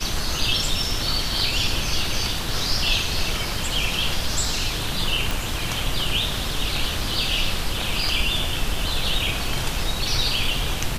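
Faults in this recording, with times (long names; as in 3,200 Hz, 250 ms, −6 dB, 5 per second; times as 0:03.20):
0:05.31: click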